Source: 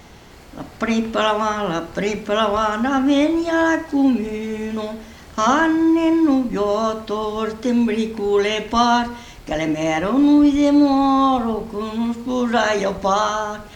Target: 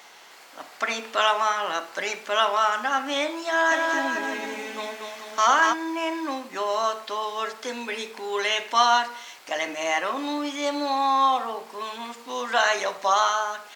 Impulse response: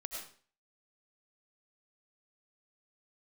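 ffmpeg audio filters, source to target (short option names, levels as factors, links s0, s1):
-filter_complex "[0:a]highpass=820,asplit=3[s0][s1][s2];[s0]afade=t=out:st=3.7:d=0.02[s3];[s1]aecho=1:1:240|432|585.6|708.5|806.8:0.631|0.398|0.251|0.158|0.1,afade=t=in:st=3.7:d=0.02,afade=t=out:st=5.72:d=0.02[s4];[s2]afade=t=in:st=5.72:d=0.02[s5];[s3][s4][s5]amix=inputs=3:normalize=0"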